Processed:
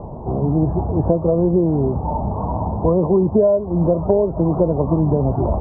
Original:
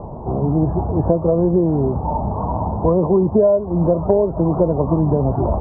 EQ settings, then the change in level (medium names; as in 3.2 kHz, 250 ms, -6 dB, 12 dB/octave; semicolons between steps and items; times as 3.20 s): low-pass 1.2 kHz 6 dB/octave; 0.0 dB